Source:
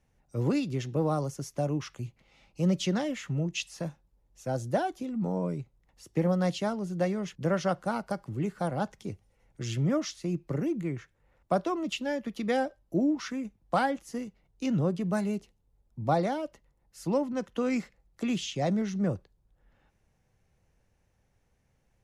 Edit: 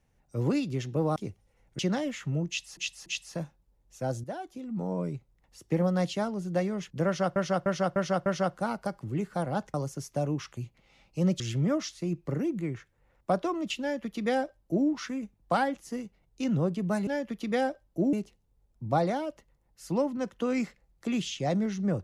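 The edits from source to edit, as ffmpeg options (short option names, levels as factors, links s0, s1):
-filter_complex "[0:a]asplit=14[s0][s1][s2][s3][s4][s5][s6][s7][s8][s9][s10][s11][s12][s13];[s0]atrim=end=1.162[s14];[s1]atrim=start=8.988:end=9.622[s15];[s2]atrim=start=2.818:end=3.802[s16];[s3]atrim=start=3.508:end=3.802[s17];[s4]atrim=start=3.508:end=4.69,asetpts=PTS-STARTPTS,afade=t=out:st=1.178:d=0.004:c=hsin:silence=0.251189[s18];[s5]atrim=start=4.69:end=7.812,asetpts=PTS-STARTPTS,afade=t=in:d=0.84:silence=0.251189[s19];[s6]atrim=start=7.508:end=7.812[s20];[s7]atrim=start=7.508:end=7.812[s21];[s8]atrim=start=7.508:end=7.812[s22];[s9]atrim=start=7.508:end=8.992[s23];[s10]atrim=start=1.158:end=2.822[s24];[s11]atrim=start=9.618:end=15.292[s25];[s12]atrim=start=12.028:end=13.092[s26];[s13]atrim=start=15.288[s27];[s14][s15]acrossfade=d=0.004:c1=hsin:c2=hsin[s28];[s28][s16]acrossfade=d=0.004:c1=hsin:c2=hsin[s29];[s29][s17]acrossfade=d=0.004:c1=hsin:c2=hsin[s30];[s18][s19]concat=n=2:v=0:a=1[s31];[s30][s31]acrossfade=d=0.004:c1=hsin:c2=hsin[s32];[s32][s20]acrossfade=d=0.004:c1=hsin:c2=hsin[s33];[s33][s21]acrossfade=d=0.004:c1=hsin:c2=hsin[s34];[s34][s22]acrossfade=d=0.004:c1=hsin:c2=hsin[s35];[s35][s23]acrossfade=d=0.004:c1=hsin:c2=hsin[s36];[s36][s24]acrossfade=d=0.004:c1=hsin:c2=hsin[s37];[s37][s25]acrossfade=d=0.004:c1=hsin:c2=hsin[s38];[s38][s26]acrossfade=d=0.004:c1=hsin:c2=hsin[s39];[s39][s27]acrossfade=d=0.004:c1=hsin:c2=hsin"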